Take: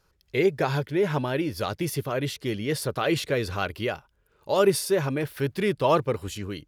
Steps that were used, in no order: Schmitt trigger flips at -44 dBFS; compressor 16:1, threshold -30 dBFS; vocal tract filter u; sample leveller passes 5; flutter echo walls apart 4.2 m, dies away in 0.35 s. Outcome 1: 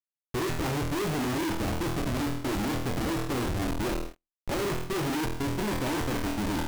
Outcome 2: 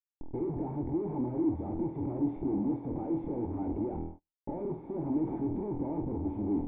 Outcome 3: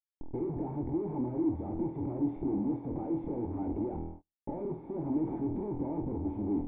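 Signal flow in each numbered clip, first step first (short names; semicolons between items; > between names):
vocal tract filter > Schmitt trigger > flutter echo > compressor > sample leveller; Schmitt trigger > compressor > flutter echo > sample leveller > vocal tract filter; Schmitt trigger > flutter echo > compressor > sample leveller > vocal tract filter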